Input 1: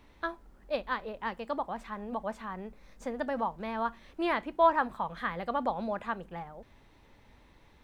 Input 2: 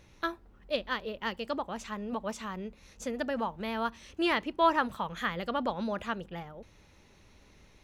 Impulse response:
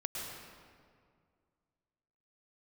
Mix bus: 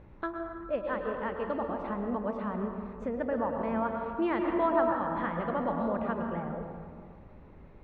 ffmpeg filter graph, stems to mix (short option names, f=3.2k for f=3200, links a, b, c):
-filter_complex "[0:a]volume=-14dB,asplit=2[a][b];[1:a]lowpass=1.3k,volume=-1,volume=3dB,asplit=2[c][d];[d]volume=-3.5dB[e];[b]apad=whole_len=345359[f];[c][f]sidechaincompress=threshold=-52dB:ratio=8:attack=5.5:release=285[g];[2:a]atrim=start_sample=2205[h];[e][h]afir=irnorm=-1:irlink=0[i];[a][g][i]amix=inputs=3:normalize=0,highshelf=f=3.9k:g=-11.5"